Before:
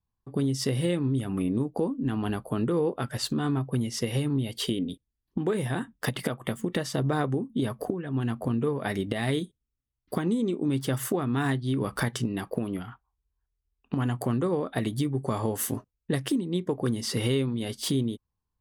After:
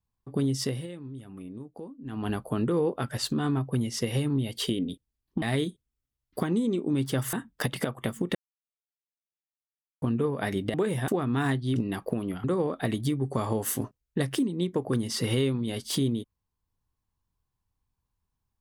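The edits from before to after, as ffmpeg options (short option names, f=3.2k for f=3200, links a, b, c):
-filter_complex "[0:a]asplit=11[a][b][c][d][e][f][g][h][i][j][k];[a]atrim=end=0.87,asetpts=PTS-STARTPTS,afade=t=out:st=0.6:d=0.27:silence=0.199526[l];[b]atrim=start=0.87:end=2.04,asetpts=PTS-STARTPTS,volume=-14dB[m];[c]atrim=start=2.04:end=5.422,asetpts=PTS-STARTPTS,afade=t=in:d=0.27:silence=0.199526[n];[d]atrim=start=9.168:end=11.082[o];[e]atrim=start=5.758:end=6.78,asetpts=PTS-STARTPTS,afade=t=out:st=1.018:d=0.004:c=hsin[p];[f]atrim=start=6.78:end=8.45,asetpts=PTS-STARTPTS,volume=0[q];[g]atrim=start=8.45:end=9.172,asetpts=PTS-STARTPTS,afade=t=in:d=0.004:c=hsin[r];[h]atrim=start=5.418:end=5.762[s];[i]atrim=start=11.078:end=11.762[t];[j]atrim=start=12.208:end=12.892[u];[k]atrim=start=14.368[v];[l][m][n]concat=n=3:v=0:a=1[w];[w][o]acrossfade=d=0.004:c1=hsin:c2=hsin[x];[p][q][r]concat=n=3:v=0:a=1[y];[x][y]acrossfade=d=0.004:c1=hsin:c2=hsin[z];[z][s]acrossfade=d=0.004:c1=hsin:c2=hsin[aa];[aa][t]acrossfade=d=0.004:c1=hsin:c2=hsin[ab];[ab][u]acrossfade=d=0.004:c1=hsin:c2=hsin[ac];[ac][v]acrossfade=d=0.004:c1=hsin:c2=hsin"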